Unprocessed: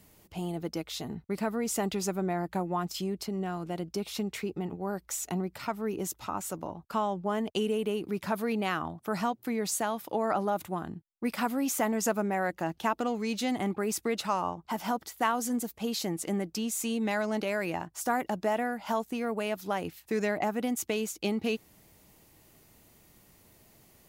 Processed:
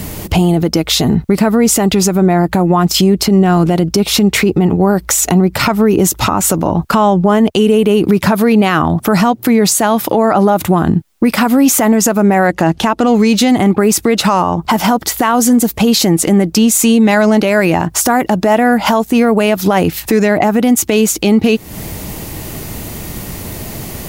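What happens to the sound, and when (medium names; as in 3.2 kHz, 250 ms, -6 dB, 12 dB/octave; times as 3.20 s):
12.47–13.07 s: low-pass 11 kHz
whole clip: bass shelf 280 Hz +6 dB; compression 6:1, threshold -38 dBFS; loudness maximiser +33.5 dB; trim -1.5 dB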